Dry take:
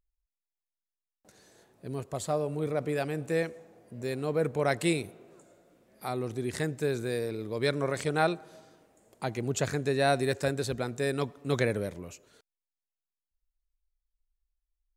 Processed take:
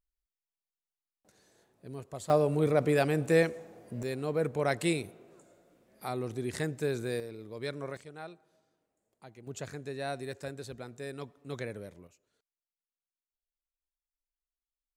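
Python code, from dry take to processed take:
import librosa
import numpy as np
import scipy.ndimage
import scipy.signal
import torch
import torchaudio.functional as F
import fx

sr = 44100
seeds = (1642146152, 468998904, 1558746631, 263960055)

y = fx.gain(x, sr, db=fx.steps((0.0, -6.5), (2.3, 4.5), (4.03, -2.0), (7.2, -9.0), (7.97, -18.5), (9.47, -11.0), (12.07, -18.0)))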